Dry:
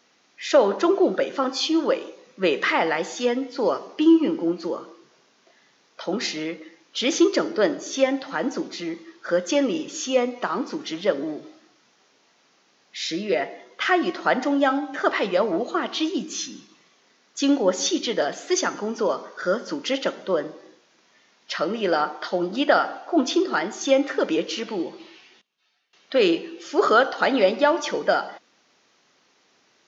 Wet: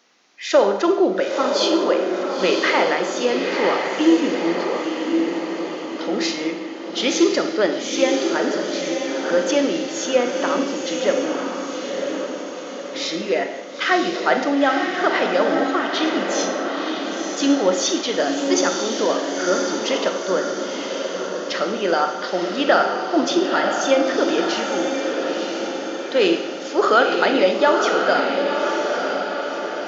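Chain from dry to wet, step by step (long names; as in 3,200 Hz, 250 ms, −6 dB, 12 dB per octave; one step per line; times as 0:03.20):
low-shelf EQ 120 Hz −10.5 dB
mains-hum notches 50/100/150 Hz
on a send: feedback delay with all-pass diffusion 983 ms, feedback 55%, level −4 dB
on the sum: four-comb reverb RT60 0.79 s, combs from 32 ms, DRR 7.5 dB
level +2 dB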